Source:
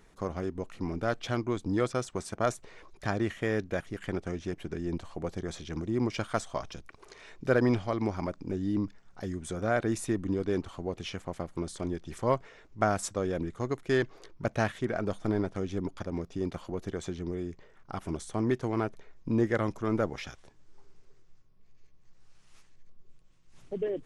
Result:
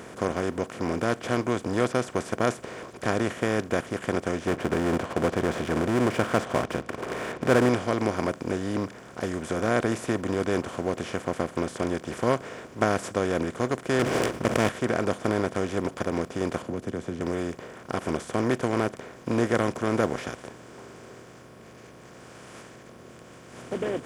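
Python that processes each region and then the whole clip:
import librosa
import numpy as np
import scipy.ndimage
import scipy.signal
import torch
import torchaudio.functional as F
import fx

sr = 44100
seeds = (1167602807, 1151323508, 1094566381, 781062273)

y = fx.chain(x, sr, fx.lowpass(hz=2300.0, slope=12),
    fx.power_curve(exponent=0.7), at=(4.47, 7.69))
y = fx.chain(y, sr, fx.lower_of_two(delay_ms=0.37),
    fx.sustainer(db_per_s=22.0), at=(13.99, 14.69))
y = fx.chain(y, sr, fx.curve_eq(hz=(250.0, 430.0, 770.0), db=(0, -9, -19)),
    fx.band_squash(depth_pct=40), at=(16.62, 17.21))
y = fx.bin_compress(y, sr, power=0.4)
y = scipy.signal.sosfilt(scipy.signal.butter(2, 80.0, 'highpass', fs=sr, output='sos'), y)
y = fx.upward_expand(y, sr, threshold_db=-33.0, expansion=1.5)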